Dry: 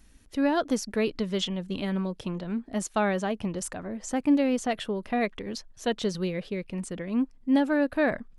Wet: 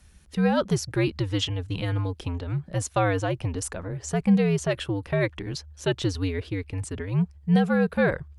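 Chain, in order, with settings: frequency shift -88 Hz; gain +2.5 dB

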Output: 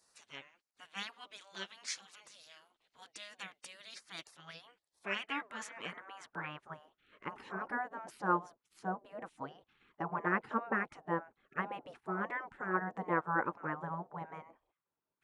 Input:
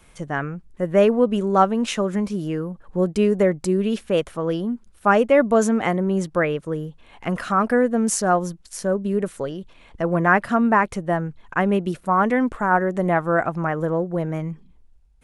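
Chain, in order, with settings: band-pass sweep 3400 Hz -> 670 Hz, 4.28–7.4; wow and flutter 20 cents; spectral gate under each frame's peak -15 dB weak; gain +3.5 dB

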